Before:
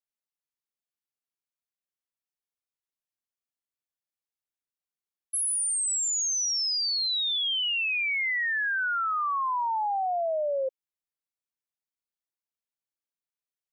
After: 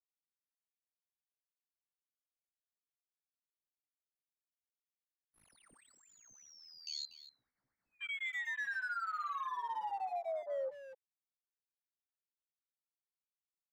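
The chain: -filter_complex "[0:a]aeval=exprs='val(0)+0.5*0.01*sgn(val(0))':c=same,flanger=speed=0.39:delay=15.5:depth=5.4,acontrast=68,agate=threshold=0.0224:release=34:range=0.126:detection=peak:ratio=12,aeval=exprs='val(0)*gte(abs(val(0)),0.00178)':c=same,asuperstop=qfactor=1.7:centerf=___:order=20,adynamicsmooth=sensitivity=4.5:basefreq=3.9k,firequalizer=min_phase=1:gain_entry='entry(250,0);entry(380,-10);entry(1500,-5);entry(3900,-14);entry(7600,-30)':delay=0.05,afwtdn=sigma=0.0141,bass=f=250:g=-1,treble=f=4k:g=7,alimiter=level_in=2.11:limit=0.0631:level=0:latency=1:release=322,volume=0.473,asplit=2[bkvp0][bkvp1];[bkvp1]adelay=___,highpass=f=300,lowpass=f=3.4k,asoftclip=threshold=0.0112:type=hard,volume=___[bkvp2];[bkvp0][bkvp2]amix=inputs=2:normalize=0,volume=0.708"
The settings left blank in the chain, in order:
3100, 240, 0.398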